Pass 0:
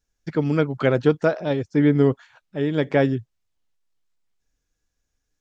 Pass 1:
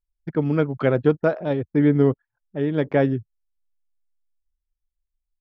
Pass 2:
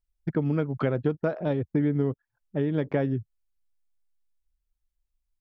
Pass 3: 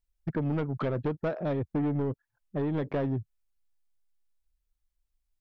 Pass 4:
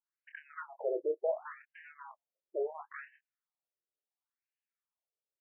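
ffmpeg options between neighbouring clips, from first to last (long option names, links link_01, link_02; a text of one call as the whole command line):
ffmpeg -i in.wav -af "lowpass=frequency=2000:poles=1,anlmdn=1" out.wav
ffmpeg -i in.wav -af "equalizer=frequency=81:width=0.34:gain=4.5,acompressor=threshold=-23dB:ratio=4" out.wav
ffmpeg -i in.wav -af "asoftclip=type=tanh:threshold=-23.5dB" out.wav
ffmpeg -i in.wav -filter_complex "[0:a]asplit=2[link_01][link_02];[link_02]adelay=26,volume=-7dB[link_03];[link_01][link_03]amix=inputs=2:normalize=0,afftfilt=real='re*between(b*sr/1024,440*pow(2200/440,0.5+0.5*sin(2*PI*0.71*pts/sr))/1.41,440*pow(2200/440,0.5+0.5*sin(2*PI*0.71*pts/sr))*1.41)':imag='im*between(b*sr/1024,440*pow(2200/440,0.5+0.5*sin(2*PI*0.71*pts/sr))/1.41,440*pow(2200/440,0.5+0.5*sin(2*PI*0.71*pts/sr))*1.41)':win_size=1024:overlap=0.75" out.wav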